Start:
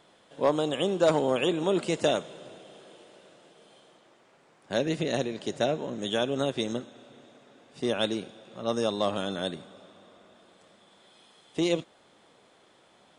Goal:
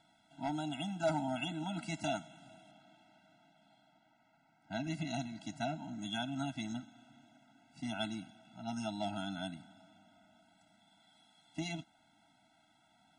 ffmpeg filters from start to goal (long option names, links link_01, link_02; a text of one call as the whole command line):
ffmpeg -i in.wav -filter_complex "[0:a]asettb=1/sr,asplit=3[link_01][link_02][link_03];[link_01]atrim=end=2.714[link_04];[link_02]atrim=start=2.71:end=4.84,asetpts=PTS-STARTPTS,afade=type=in:duration=0.004:curve=qsin,afade=type=out:start_time=2.126:duration=0.004:curve=qsin,adynamicsmooth=sensitivity=0.5:basefreq=5800[link_05];[link_03]atrim=start=4.836[link_06];[link_04][link_05]acrossfade=duration=0.004:curve1=hsin:curve2=qsin[link_07];[link_07][link_06]acrossfade=duration=0.004:curve1=qsin:curve2=hsin,afftfilt=real='re*eq(mod(floor(b*sr/1024/320),2),0)':imag='im*eq(mod(floor(b*sr/1024/320),2),0)':win_size=1024:overlap=0.75,volume=-6dB" out.wav